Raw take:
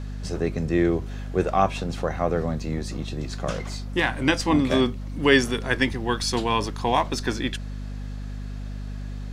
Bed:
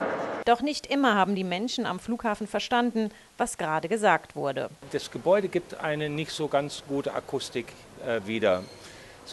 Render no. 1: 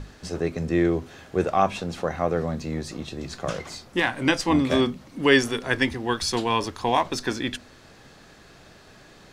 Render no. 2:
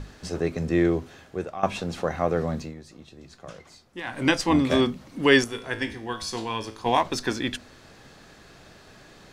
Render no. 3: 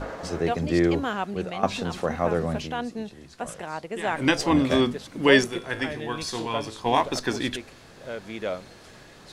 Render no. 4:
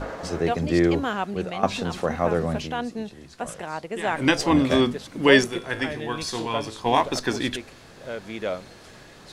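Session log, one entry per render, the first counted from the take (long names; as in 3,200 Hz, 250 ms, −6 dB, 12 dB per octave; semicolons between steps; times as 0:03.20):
mains-hum notches 50/100/150/200/250 Hz
0:00.91–0:01.63: fade out, to −16.5 dB; 0:02.59–0:04.19: duck −13 dB, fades 0.15 s; 0:05.44–0:06.86: tuned comb filter 55 Hz, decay 0.48 s, mix 70%
mix in bed −6.5 dB
level +1.5 dB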